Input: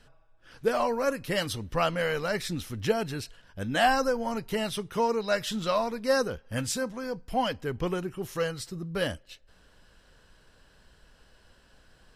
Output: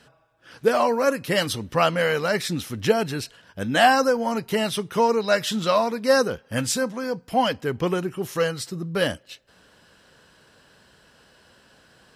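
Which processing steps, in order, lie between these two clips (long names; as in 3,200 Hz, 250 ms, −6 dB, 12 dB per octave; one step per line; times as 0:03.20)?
high-pass filter 120 Hz 12 dB per octave
level +6.5 dB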